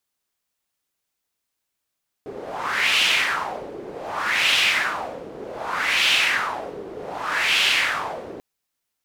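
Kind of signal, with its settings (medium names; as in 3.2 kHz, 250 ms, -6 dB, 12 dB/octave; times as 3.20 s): wind-like swept noise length 6.14 s, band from 400 Hz, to 2.9 kHz, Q 3.1, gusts 4, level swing 17.5 dB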